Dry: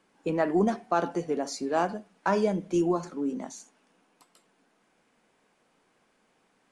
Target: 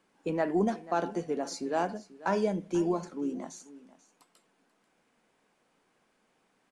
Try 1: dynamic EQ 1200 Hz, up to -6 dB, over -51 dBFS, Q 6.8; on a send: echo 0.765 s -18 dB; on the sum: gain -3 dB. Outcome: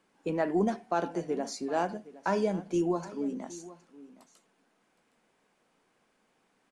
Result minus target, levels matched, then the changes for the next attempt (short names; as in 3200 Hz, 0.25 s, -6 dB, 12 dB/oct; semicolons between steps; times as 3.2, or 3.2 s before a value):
echo 0.277 s late
change: echo 0.488 s -18 dB